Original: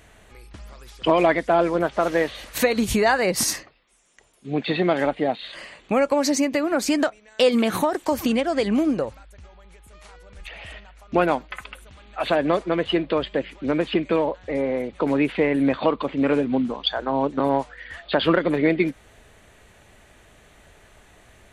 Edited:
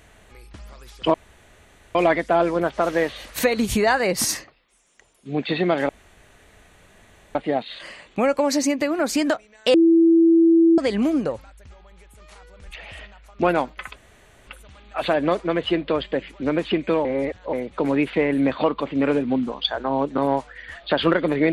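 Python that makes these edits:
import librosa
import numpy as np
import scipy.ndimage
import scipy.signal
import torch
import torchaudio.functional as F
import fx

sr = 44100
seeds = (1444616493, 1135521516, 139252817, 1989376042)

y = fx.edit(x, sr, fx.insert_room_tone(at_s=1.14, length_s=0.81),
    fx.insert_room_tone(at_s=5.08, length_s=1.46),
    fx.bleep(start_s=7.47, length_s=1.04, hz=331.0, db=-11.0),
    fx.insert_room_tone(at_s=11.69, length_s=0.51),
    fx.reverse_span(start_s=14.27, length_s=0.48), tone=tone)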